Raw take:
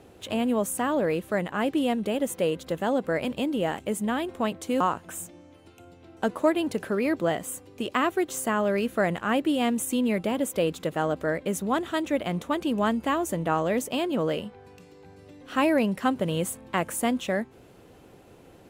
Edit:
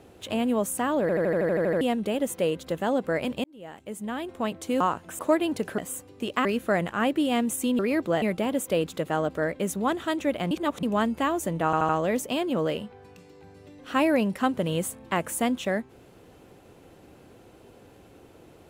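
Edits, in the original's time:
1.01 stutter in place 0.08 s, 10 plays
3.44–4.66 fade in
5.19–6.34 cut
6.93–7.36 move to 10.08
8.03–8.74 cut
12.37–12.69 reverse
13.51 stutter 0.08 s, 4 plays

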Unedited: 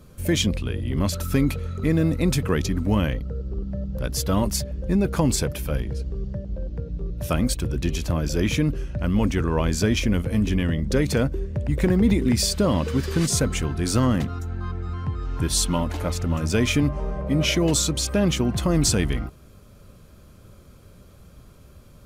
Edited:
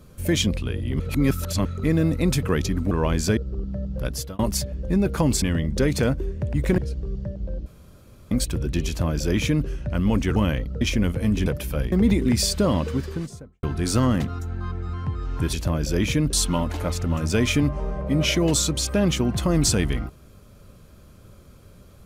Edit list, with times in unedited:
1–1.65 reverse
2.91–3.36 swap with 9.45–9.91
4.06–4.38 fade out
5.41–5.87 swap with 10.56–11.92
6.75–7.4 room tone
7.96–8.76 copy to 15.53
12.66–13.63 studio fade out

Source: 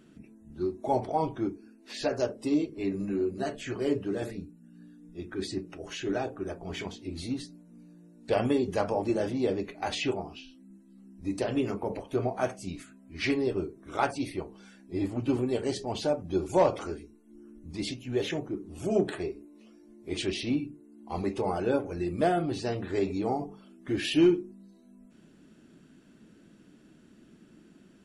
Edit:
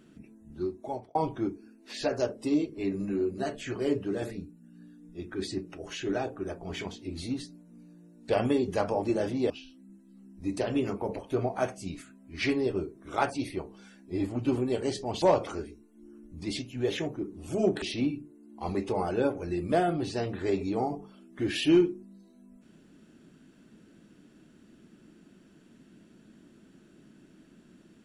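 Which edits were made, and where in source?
0.55–1.15 fade out
9.5–10.31 cut
16.03–16.54 cut
19.14–20.31 cut

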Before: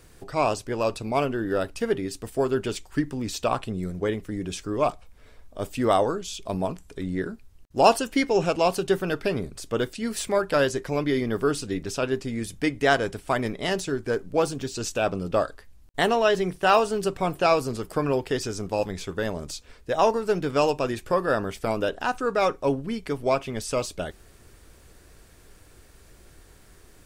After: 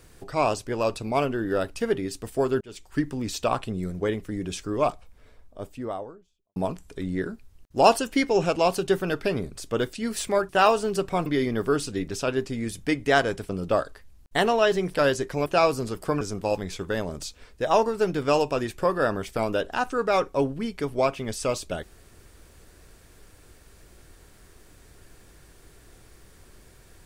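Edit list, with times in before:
2.61–3.01 fade in
4.77–6.56 studio fade out
10.49–11.01 swap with 16.57–17.34
13.24–15.12 cut
18.09–18.49 cut

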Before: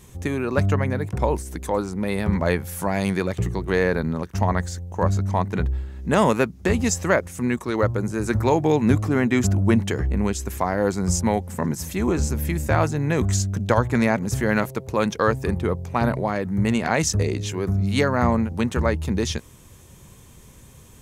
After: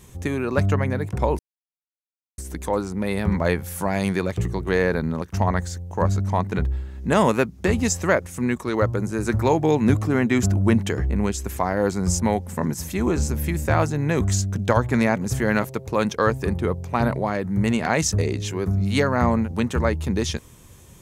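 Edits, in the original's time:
1.39 insert silence 0.99 s

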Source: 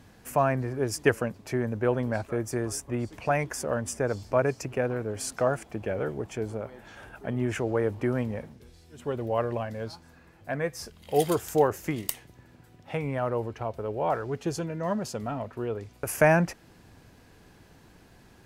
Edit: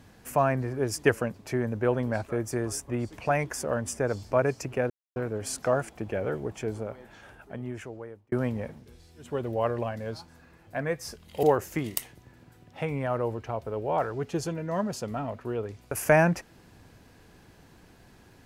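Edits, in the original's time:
4.9 insert silence 0.26 s
6.47–8.06 fade out
11.17–11.55 cut

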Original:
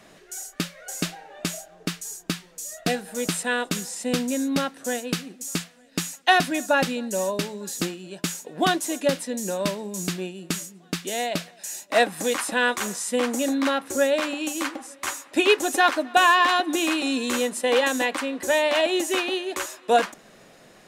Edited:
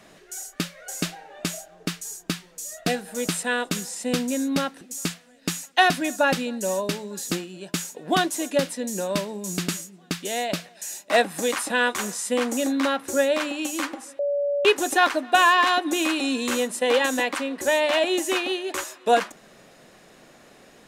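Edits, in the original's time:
4.81–5.31 cut
10.18–10.5 cut
15.01–15.47 bleep 572 Hz -21 dBFS

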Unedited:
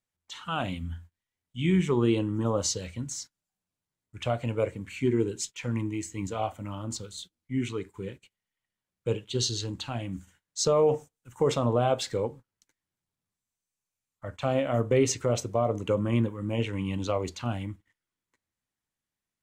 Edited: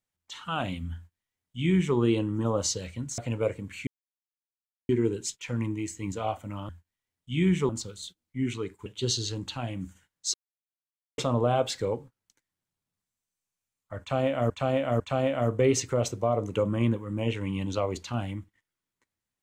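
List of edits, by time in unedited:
0.96–1.96 copy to 6.84
3.18–4.35 cut
5.04 insert silence 1.02 s
8.01–9.18 cut
10.66–11.5 mute
14.32–14.82 loop, 3 plays

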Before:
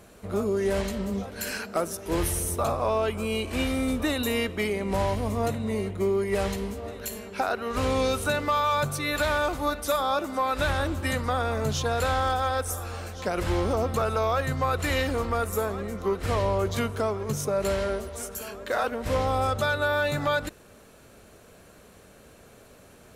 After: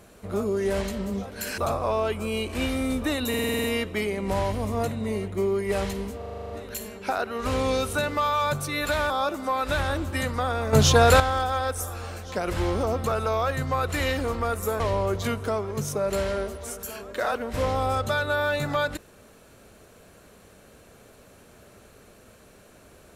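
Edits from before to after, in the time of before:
1.58–2.56 cut
4.27 stutter 0.05 s, 8 plays
6.81 stutter 0.04 s, 9 plays
9.41–10 cut
11.63–12.1 gain +10 dB
15.7–16.32 cut

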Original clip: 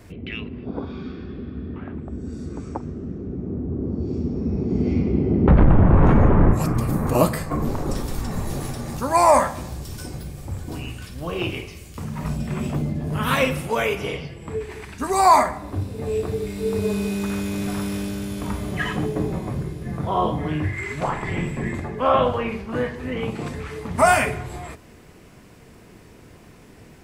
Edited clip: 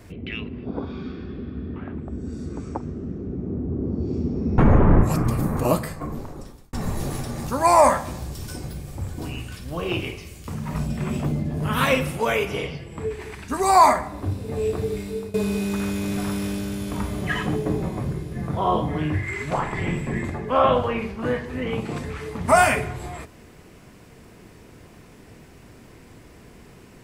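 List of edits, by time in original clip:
4.58–6.08 cut
6.79–8.23 fade out
16.48–16.84 fade out, to -19 dB

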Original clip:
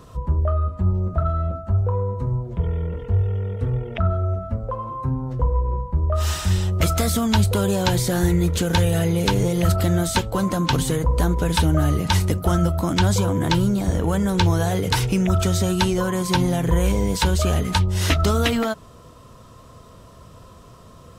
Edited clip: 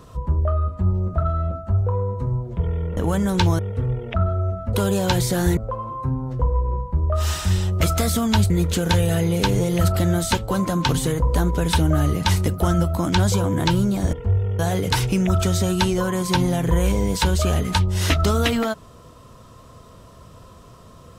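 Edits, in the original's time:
2.97–3.43 swap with 13.97–14.59
7.5–8.34 move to 4.57

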